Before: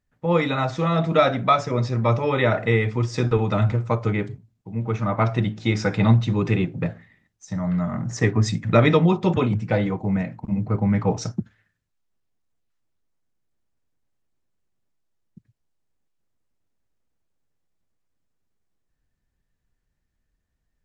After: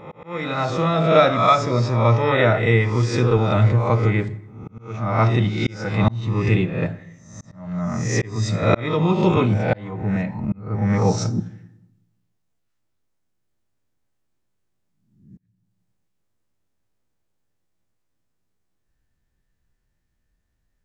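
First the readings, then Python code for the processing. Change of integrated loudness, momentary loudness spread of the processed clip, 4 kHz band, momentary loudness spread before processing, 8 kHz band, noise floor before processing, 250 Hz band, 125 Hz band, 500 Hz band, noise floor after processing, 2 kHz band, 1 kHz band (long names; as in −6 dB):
+2.0 dB, 12 LU, +2.5 dB, 10 LU, can't be measured, −76 dBFS, +0.5 dB, +2.0 dB, +2.0 dB, −72 dBFS, +2.5 dB, +3.0 dB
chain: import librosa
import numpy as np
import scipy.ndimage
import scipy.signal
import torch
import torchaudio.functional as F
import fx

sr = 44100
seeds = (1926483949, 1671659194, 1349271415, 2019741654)

y = fx.spec_swells(x, sr, rise_s=0.66)
y = fx.rev_fdn(y, sr, rt60_s=0.91, lf_ratio=1.25, hf_ratio=0.75, size_ms=53.0, drr_db=13.5)
y = fx.auto_swell(y, sr, attack_ms=447.0)
y = F.gain(torch.from_numpy(y), 1.0).numpy()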